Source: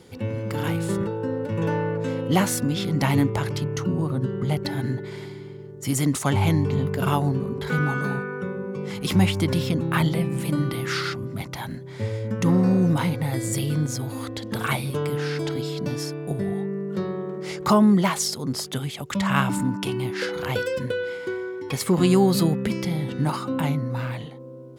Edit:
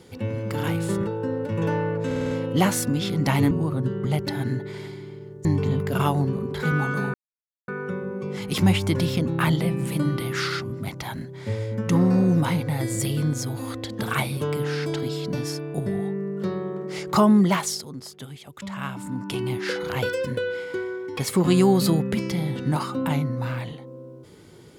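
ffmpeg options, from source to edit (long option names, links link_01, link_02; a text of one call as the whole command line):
ffmpeg -i in.wav -filter_complex "[0:a]asplit=11[link_01][link_02][link_03][link_04][link_05][link_06][link_07][link_08][link_09][link_10][link_11];[link_01]atrim=end=2.112[link_12];[link_02]atrim=start=2.058:end=2.112[link_13];[link_03]atrim=start=2.058:end=2.112[link_14];[link_04]atrim=start=2.058:end=2.112[link_15];[link_05]atrim=start=2.058:end=2.112[link_16];[link_06]atrim=start=2.058:end=3.262[link_17];[link_07]atrim=start=3.888:end=5.832[link_18];[link_08]atrim=start=6.518:end=8.21,asetpts=PTS-STARTPTS,afade=type=out:start_time=1.688:duration=0.004:curve=hsin,apad=pad_dur=0.54[link_19];[link_09]atrim=start=8.21:end=18.49,asetpts=PTS-STARTPTS,afade=type=in:duration=0.004:curve=hsin,afade=type=out:start_time=9.87:duration=0.41:silence=0.298538[link_20];[link_10]atrim=start=18.49:end=19.56,asetpts=PTS-STARTPTS,volume=-10.5dB[link_21];[link_11]atrim=start=19.56,asetpts=PTS-STARTPTS,afade=type=in:duration=0.41:silence=0.298538[link_22];[link_12][link_13]acrossfade=duration=0.004:curve1=hsin:curve2=hsin[link_23];[link_23][link_14]acrossfade=duration=0.004:curve1=hsin:curve2=hsin[link_24];[link_24][link_15]acrossfade=duration=0.004:curve1=hsin:curve2=hsin[link_25];[link_25][link_16]acrossfade=duration=0.004:curve1=hsin:curve2=hsin[link_26];[link_26][link_17]acrossfade=duration=0.004:curve1=hsin:curve2=hsin[link_27];[link_27][link_18]acrossfade=duration=0.004:curve1=hsin:curve2=hsin[link_28];[link_19][link_20][link_21][link_22]concat=n=4:v=0:a=1[link_29];[link_28][link_29]acrossfade=duration=0.004:curve1=hsin:curve2=hsin" out.wav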